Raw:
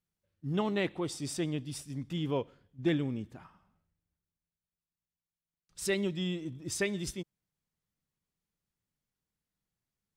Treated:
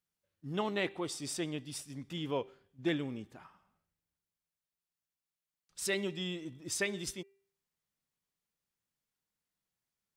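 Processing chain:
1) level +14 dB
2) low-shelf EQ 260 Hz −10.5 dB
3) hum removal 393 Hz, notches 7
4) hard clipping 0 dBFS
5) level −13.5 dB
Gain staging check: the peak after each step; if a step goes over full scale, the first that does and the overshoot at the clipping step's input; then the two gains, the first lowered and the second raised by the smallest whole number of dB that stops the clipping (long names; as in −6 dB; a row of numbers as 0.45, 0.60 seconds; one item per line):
−4.0, −4.5, −5.0, −5.0, −18.5 dBFS
no step passes full scale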